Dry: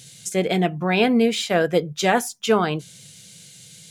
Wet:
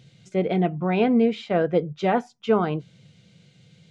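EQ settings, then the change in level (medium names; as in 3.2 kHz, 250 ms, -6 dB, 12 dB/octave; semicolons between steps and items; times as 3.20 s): tape spacing loss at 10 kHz 36 dB; band-stop 1.7 kHz, Q 11; 0.0 dB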